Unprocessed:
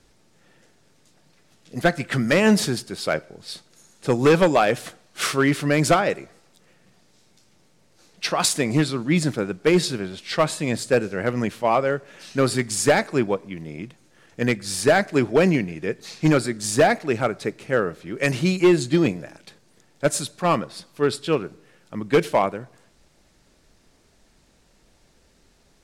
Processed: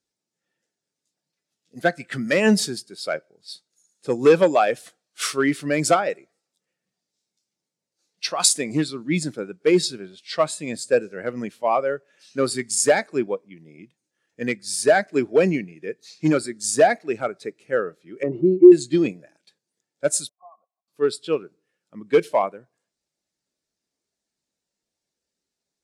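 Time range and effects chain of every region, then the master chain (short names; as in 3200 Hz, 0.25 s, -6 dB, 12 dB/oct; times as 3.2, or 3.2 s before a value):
18.23–18.72 bell 360 Hz +11.5 dB 0.43 oct + compressor 3:1, threshold -12 dBFS + polynomial smoothing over 65 samples
20.29–20.88 compressor 16:1, threshold -24 dBFS + transient shaper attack +2 dB, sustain -10 dB + vocal tract filter a
whole clip: HPF 220 Hz 6 dB/oct; high shelf 3400 Hz +10 dB; spectral expander 1.5:1; gain -1 dB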